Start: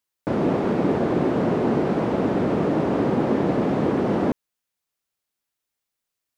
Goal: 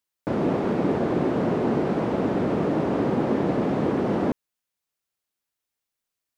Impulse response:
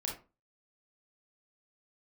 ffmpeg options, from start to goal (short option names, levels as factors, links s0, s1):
-af "volume=0.794"